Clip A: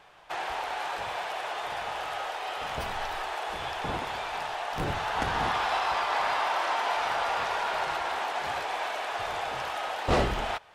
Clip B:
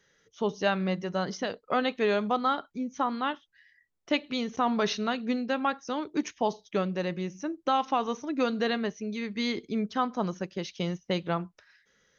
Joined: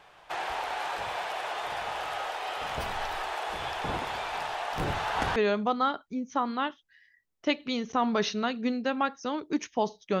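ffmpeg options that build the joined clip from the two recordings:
ffmpeg -i cue0.wav -i cue1.wav -filter_complex "[0:a]apad=whole_dur=10.2,atrim=end=10.2,atrim=end=5.362[link_01];[1:a]atrim=start=1.998:end=6.84[link_02];[link_01][link_02]acrossfade=duration=0.004:curve1=hsin:curve2=hsin" out.wav

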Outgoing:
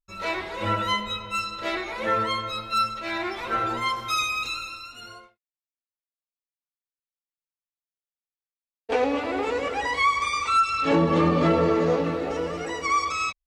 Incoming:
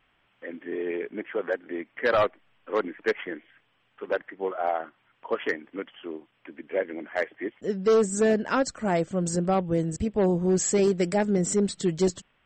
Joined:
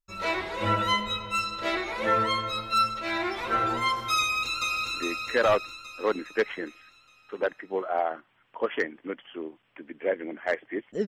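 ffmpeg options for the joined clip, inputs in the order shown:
ffmpeg -i cue0.wav -i cue1.wav -filter_complex "[0:a]apad=whole_dur=11.07,atrim=end=11.07,atrim=end=4.932[link_01];[1:a]atrim=start=1.618:end=7.76[link_02];[link_01][link_02]acrossfade=duration=0.004:curve1=hsin:curve2=hsin,asplit=2[link_03][link_04];[link_04]afade=type=in:start_time=4.2:duration=0.01,afade=type=out:start_time=4.93:duration=0.01,aecho=0:1:410|820|1230|1640|2050|2460|2870|3280:0.794328|0.436881|0.240284|0.132156|0.072686|0.0399773|0.0219875|0.0120931[link_05];[link_03][link_05]amix=inputs=2:normalize=0" out.wav

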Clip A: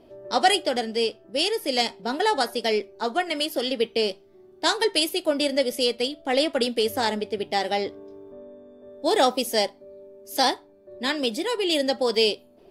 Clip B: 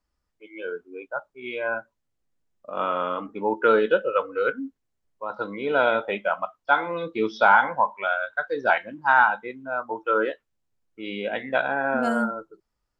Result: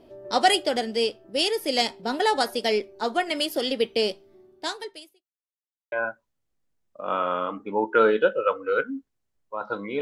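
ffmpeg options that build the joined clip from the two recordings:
ffmpeg -i cue0.wav -i cue1.wav -filter_complex "[0:a]apad=whole_dur=10.01,atrim=end=10.01,asplit=2[link_01][link_02];[link_01]atrim=end=5.27,asetpts=PTS-STARTPTS,afade=type=out:start_time=4.32:duration=0.95:curve=qua[link_03];[link_02]atrim=start=5.27:end=5.92,asetpts=PTS-STARTPTS,volume=0[link_04];[1:a]atrim=start=1.61:end=5.7,asetpts=PTS-STARTPTS,afade=type=in:duration=0.004:curve=hsin[link_05];[link_03][link_04][link_05]concat=n=3:v=0:a=1" out.wav

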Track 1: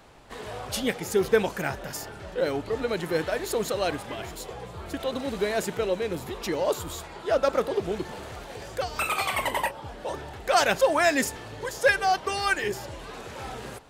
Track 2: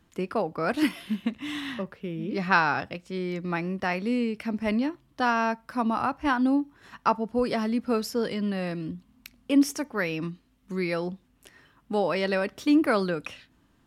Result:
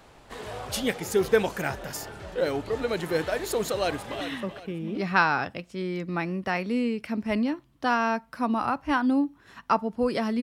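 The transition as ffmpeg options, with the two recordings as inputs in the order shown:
ffmpeg -i cue0.wav -i cue1.wav -filter_complex "[0:a]apad=whole_dur=10.42,atrim=end=10.42,atrim=end=4.212[link_01];[1:a]atrim=start=1.568:end=7.78[link_02];[link_01][link_02]acrossfade=duration=0.004:curve1=hsin:curve2=hsin,asplit=2[link_03][link_04];[link_04]afade=type=in:start_time=3.72:duration=0.01,afade=type=out:start_time=4.21:duration=0.01,aecho=0:1:380|760|1140|1520:0.298538|0.104488|0.0365709|0.0127998[link_05];[link_03][link_05]amix=inputs=2:normalize=0" out.wav

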